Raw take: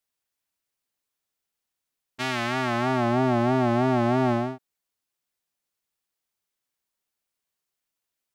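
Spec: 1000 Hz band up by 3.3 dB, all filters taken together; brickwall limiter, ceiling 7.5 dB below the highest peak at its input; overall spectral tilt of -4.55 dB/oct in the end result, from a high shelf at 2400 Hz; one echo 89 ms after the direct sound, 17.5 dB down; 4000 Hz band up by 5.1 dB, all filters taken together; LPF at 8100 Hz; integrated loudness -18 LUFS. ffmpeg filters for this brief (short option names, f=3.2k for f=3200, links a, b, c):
-af "lowpass=8.1k,equalizer=f=1k:t=o:g=3.5,highshelf=f=2.4k:g=3.5,equalizer=f=4k:t=o:g=3.5,alimiter=limit=-16dB:level=0:latency=1,aecho=1:1:89:0.133,volume=10dB"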